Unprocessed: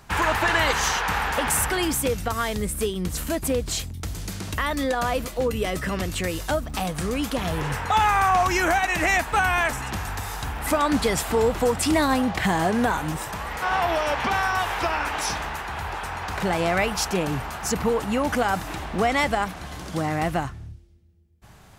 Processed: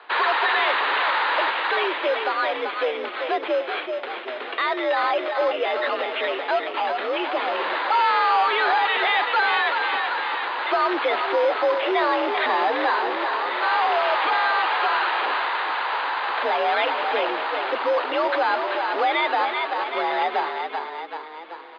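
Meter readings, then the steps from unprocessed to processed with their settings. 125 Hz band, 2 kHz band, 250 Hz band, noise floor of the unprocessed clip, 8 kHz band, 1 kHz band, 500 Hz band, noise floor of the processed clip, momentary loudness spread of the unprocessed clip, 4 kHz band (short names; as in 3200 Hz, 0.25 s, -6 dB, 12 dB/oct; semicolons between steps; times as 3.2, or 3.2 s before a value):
under -40 dB, +3.0 dB, -8.5 dB, -47 dBFS, under -30 dB, +3.5 dB, +2.0 dB, -34 dBFS, 10 LU, +3.0 dB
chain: on a send: frequency-shifting echo 0.385 s, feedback 51%, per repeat +32 Hz, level -8.5 dB; on the sum: overdrive pedal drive 19 dB, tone 2500 Hz, clips at -9 dBFS; careless resampling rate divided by 8×, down none, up hold; mistuned SSB +63 Hz 290–3600 Hz; gain -3 dB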